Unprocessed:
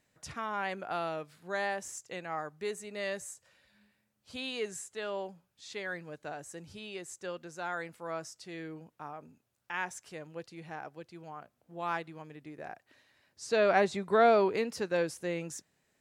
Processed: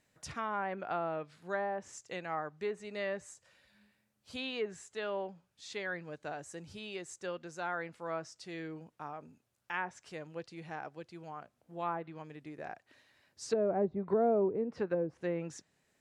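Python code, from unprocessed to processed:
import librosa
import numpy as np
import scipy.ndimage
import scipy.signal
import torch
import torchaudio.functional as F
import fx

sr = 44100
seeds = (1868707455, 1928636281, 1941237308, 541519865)

y = fx.env_lowpass_down(x, sr, base_hz=460.0, full_db=-26.5)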